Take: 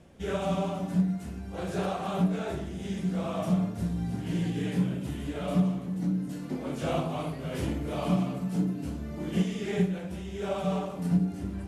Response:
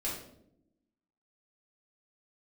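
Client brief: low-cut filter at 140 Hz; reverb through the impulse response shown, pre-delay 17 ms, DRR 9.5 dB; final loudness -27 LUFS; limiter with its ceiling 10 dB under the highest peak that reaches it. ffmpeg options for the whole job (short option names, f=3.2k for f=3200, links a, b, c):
-filter_complex "[0:a]highpass=140,alimiter=level_in=1dB:limit=-24dB:level=0:latency=1,volume=-1dB,asplit=2[a][b];[1:a]atrim=start_sample=2205,adelay=17[c];[b][c]afir=irnorm=-1:irlink=0,volume=-13dB[d];[a][d]amix=inputs=2:normalize=0,volume=6.5dB"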